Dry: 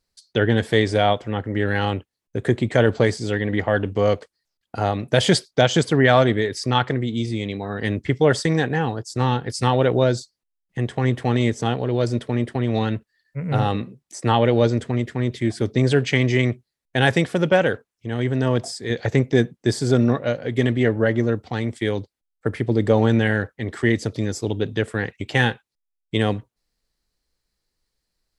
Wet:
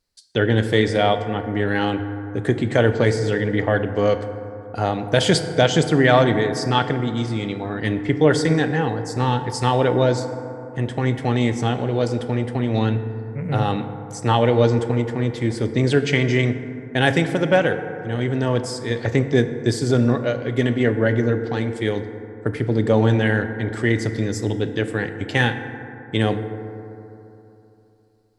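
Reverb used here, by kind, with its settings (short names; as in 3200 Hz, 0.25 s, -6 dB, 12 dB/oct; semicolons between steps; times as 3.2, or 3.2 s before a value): FDN reverb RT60 3.1 s, high-frequency decay 0.3×, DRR 8 dB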